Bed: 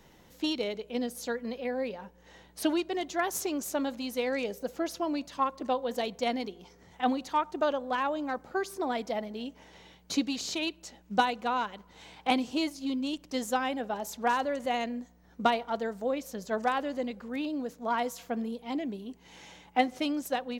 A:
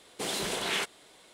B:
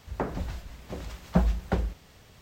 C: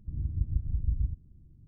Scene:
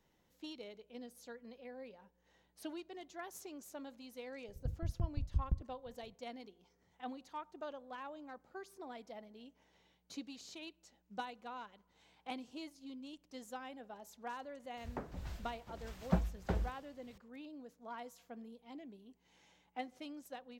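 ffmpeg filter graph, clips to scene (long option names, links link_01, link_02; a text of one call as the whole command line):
ffmpeg -i bed.wav -i cue0.wav -i cue1.wav -i cue2.wav -filter_complex "[0:a]volume=-17.5dB[link_01];[3:a]aeval=exprs='val(0)*pow(10,-28*if(lt(mod(5.8*n/s,1),2*abs(5.8)/1000),1-mod(5.8*n/s,1)/(2*abs(5.8)/1000),(mod(5.8*n/s,1)-2*abs(5.8)/1000)/(1-2*abs(5.8)/1000))/20)':channel_layout=same[link_02];[2:a]tremolo=f=1.6:d=0.68[link_03];[link_02]atrim=end=1.67,asetpts=PTS-STARTPTS,volume=-1dB,afade=type=in:duration=0.004:curve=hsin,afade=type=out:start_time=1.666:duration=0.004:curve=hsin,adelay=4480[link_04];[link_03]atrim=end=2.41,asetpts=PTS-STARTPTS,volume=-6.5dB,afade=type=in:duration=0.004:curve=hsin,afade=type=out:start_time=2.406:duration=0.004:curve=hsin,adelay=14770[link_05];[link_01][link_04][link_05]amix=inputs=3:normalize=0" out.wav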